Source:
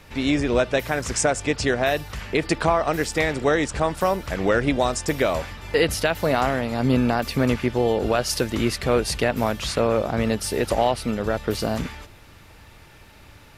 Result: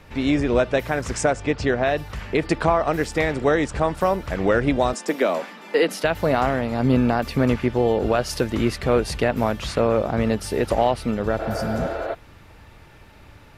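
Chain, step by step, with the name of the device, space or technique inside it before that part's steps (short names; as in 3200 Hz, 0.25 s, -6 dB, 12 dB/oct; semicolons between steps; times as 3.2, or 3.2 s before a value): behind a face mask (high shelf 2900 Hz -8 dB); 1.33–1.98 air absorption 66 m; 4.93–6.04 steep high-pass 180 Hz 72 dB/oct; 11.42–12.12 spectral repair 270–4500 Hz before; gain +1.5 dB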